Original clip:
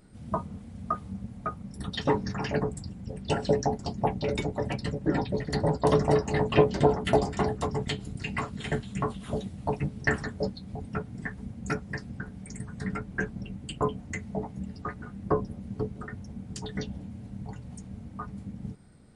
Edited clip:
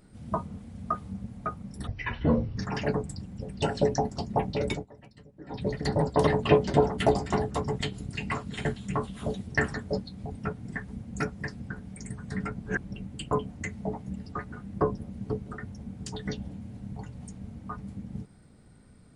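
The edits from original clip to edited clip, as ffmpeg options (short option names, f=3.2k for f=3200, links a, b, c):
-filter_complex "[0:a]asplit=9[a][b][c][d][e][f][g][h][i];[a]atrim=end=1.874[j];[b]atrim=start=1.87:end=2.25,asetpts=PTS-STARTPTS,asetrate=23814,aresample=44100,atrim=end_sample=31033,asetpts=PTS-STARTPTS[k];[c]atrim=start=2.246:end=4.54,asetpts=PTS-STARTPTS,afade=t=out:st=2.154:d=0.14:silence=0.0944061[l];[d]atrim=start=4.54:end=5.16,asetpts=PTS-STARTPTS,volume=-20.5dB[m];[e]atrim=start=5.16:end=5.952,asetpts=PTS-STARTPTS,afade=t=in:d=0.14:silence=0.0944061[n];[f]atrim=start=6.338:end=9.542[o];[g]atrim=start=9.968:end=13.052[p];[h]atrim=start=13.048:end=13.402,asetpts=PTS-STARTPTS,areverse[q];[i]atrim=start=13.398[r];[j][k]acrossfade=d=0.004:c1=hsin:c2=hsin[s];[l][m][n]concat=n=3:v=0:a=1[t];[s][t]acrossfade=d=0.004:c1=hsin:c2=hsin[u];[u][o]acrossfade=d=0.004:c1=hsin:c2=hsin[v];[v][p]acrossfade=d=0.004:c1=hsin:c2=hsin[w];[w][q]acrossfade=d=0.004:c1=hsin:c2=hsin[x];[x][r]acrossfade=d=0.004:c1=hsin:c2=hsin"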